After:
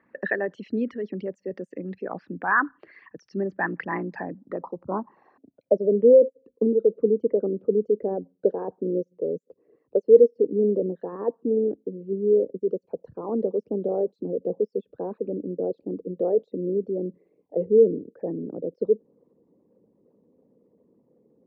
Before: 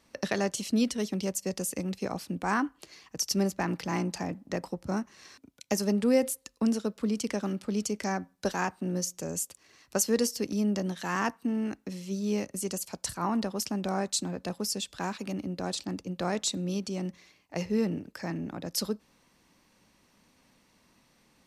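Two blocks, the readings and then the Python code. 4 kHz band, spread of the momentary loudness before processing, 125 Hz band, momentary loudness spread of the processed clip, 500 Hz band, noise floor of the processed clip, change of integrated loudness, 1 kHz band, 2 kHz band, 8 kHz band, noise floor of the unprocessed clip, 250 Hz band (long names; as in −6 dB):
below −25 dB, 8 LU, −2.5 dB, 16 LU, +12.5 dB, −72 dBFS, +6.5 dB, +1.0 dB, can't be measured, below −40 dB, −67 dBFS, 0.0 dB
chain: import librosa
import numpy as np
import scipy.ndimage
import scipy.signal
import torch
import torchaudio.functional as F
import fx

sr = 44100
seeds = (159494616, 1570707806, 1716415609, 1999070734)

y = fx.envelope_sharpen(x, sr, power=2.0)
y = fx.filter_sweep_lowpass(y, sr, from_hz=1700.0, to_hz=470.0, start_s=4.2, end_s=6.05, q=5.2)
y = fx.bandpass_edges(y, sr, low_hz=150.0, high_hz=3500.0)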